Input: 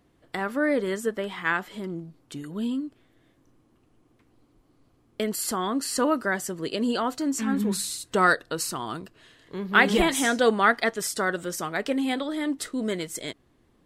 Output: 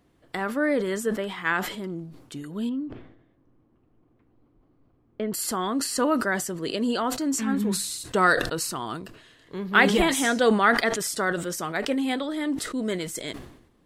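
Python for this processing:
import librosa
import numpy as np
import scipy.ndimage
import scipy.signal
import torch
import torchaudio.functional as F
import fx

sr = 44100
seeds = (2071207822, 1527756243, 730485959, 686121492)

y = fx.spacing_loss(x, sr, db_at_10k=36, at=(2.69, 5.34))
y = fx.sustainer(y, sr, db_per_s=74.0)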